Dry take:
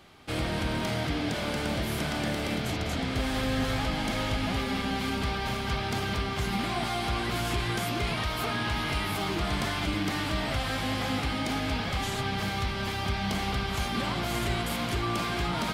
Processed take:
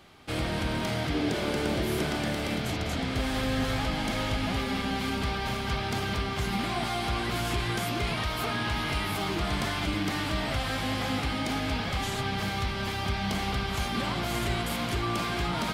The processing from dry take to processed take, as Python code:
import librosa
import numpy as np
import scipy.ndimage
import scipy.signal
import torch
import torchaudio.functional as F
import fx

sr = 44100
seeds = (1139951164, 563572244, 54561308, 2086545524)

y = fx.peak_eq(x, sr, hz=380.0, db=9.5, octaves=0.5, at=(1.14, 2.16))